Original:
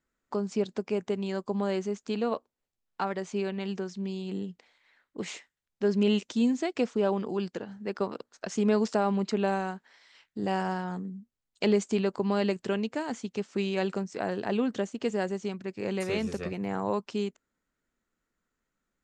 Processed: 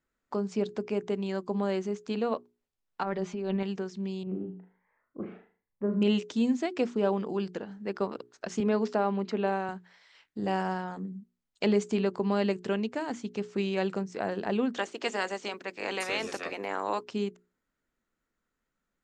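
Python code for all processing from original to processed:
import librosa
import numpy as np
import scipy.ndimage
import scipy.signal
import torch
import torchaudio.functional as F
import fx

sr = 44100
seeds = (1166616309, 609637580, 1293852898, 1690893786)

y = fx.chain(x, sr, fx.over_compress(threshold_db=-35.0, ratio=-1.0),
    fx.air_absorb(metres=85.0),
    fx.comb(ms=5.0, depth=0.75), at=(3.03, 3.63))
y = fx.chain(y, sr, fx.lowpass(hz=1500.0, slope=24),
    fx.room_flutter(wall_m=6.5, rt60_s=0.41),
    fx.notch_cascade(direction='rising', hz=1.2), at=(4.23, 6.02))
y = fx.chain(y, sr, fx.highpass(hz=200.0, slope=12),
    fx.air_absorb(metres=100.0), at=(8.6, 9.69))
y = fx.spec_clip(y, sr, under_db=16, at=(14.74, 17.02), fade=0.02)
y = fx.highpass(y, sr, hz=320.0, slope=12, at=(14.74, 17.02), fade=0.02)
y = fx.high_shelf(y, sr, hz=5800.0, db=-6.0)
y = fx.hum_notches(y, sr, base_hz=60, count=7)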